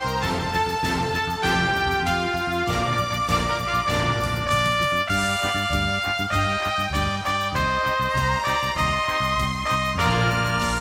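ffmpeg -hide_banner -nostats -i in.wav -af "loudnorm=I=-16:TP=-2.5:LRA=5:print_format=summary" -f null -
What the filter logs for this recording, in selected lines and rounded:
Input Integrated:    -22.3 LUFS
Input True Peak:      -7.7 dBTP
Input LRA:             0.8 LU
Input Threshold:     -32.3 LUFS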